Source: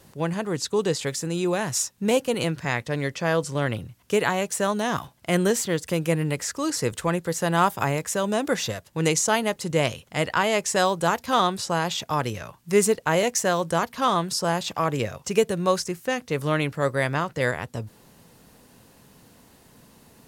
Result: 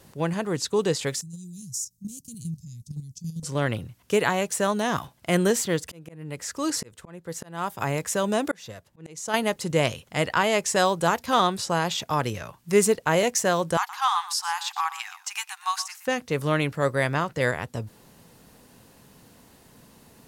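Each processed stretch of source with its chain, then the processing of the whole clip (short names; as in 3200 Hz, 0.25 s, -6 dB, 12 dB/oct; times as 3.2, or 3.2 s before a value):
1.21–3.43 elliptic band-stop 170–5900 Hz, stop band 70 dB + level quantiser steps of 10 dB + hard clip -20 dBFS
5.84–9.34 auto swell 0.612 s + mismatched tape noise reduction decoder only
13.77–16.07 brick-wall FIR high-pass 740 Hz + echo 0.119 s -14.5 dB
whole clip: dry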